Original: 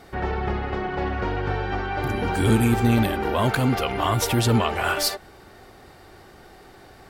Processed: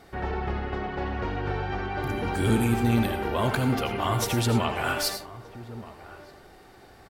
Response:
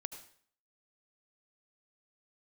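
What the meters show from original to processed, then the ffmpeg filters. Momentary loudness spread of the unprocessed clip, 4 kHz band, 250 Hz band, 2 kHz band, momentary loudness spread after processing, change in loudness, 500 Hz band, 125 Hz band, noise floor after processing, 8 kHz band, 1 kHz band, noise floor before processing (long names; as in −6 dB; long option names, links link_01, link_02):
8 LU, −4.0 dB, −3.5 dB, −4.0 dB, 18 LU, −4.0 dB, −4.0 dB, −4.0 dB, −52 dBFS, −4.0 dB, −4.0 dB, −49 dBFS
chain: -filter_complex "[0:a]asplit=2[link_01][link_02];[link_02]adelay=1224,volume=-16dB,highshelf=frequency=4000:gain=-27.6[link_03];[link_01][link_03]amix=inputs=2:normalize=0[link_04];[1:a]atrim=start_sample=2205,afade=type=out:start_time=0.17:duration=0.01,atrim=end_sample=7938[link_05];[link_04][link_05]afir=irnorm=-1:irlink=0,volume=-1.5dB"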